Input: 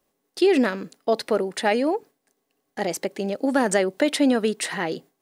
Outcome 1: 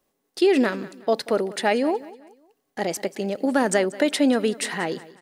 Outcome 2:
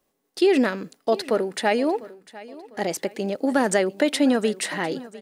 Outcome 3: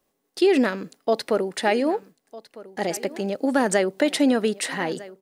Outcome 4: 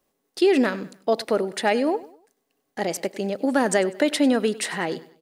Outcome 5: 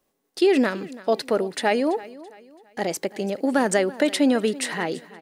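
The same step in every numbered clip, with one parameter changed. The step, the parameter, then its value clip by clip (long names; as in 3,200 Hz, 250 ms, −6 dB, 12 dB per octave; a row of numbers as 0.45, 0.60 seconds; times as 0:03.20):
repeating echo, delay time: 185, 700, 1,253, 98, 333 milliseconds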